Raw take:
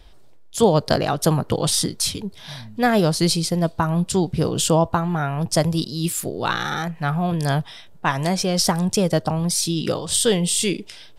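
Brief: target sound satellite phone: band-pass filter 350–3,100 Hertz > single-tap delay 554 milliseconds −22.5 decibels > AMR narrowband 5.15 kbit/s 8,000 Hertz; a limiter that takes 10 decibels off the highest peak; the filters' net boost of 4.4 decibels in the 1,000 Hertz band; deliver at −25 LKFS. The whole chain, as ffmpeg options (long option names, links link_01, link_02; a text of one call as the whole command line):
ffmpeg -i in.wav -af "equalizer=frequency=1000:width_type=o:gain=6,alimiter=limit=-10dB:level=0:latency=1,highpass=350,lowpass=3100,aecho=1:1:554:0.075,volume=1.5dB" -ar 8000 -c:a libopencore_amrnb -b:a 5150 out.amr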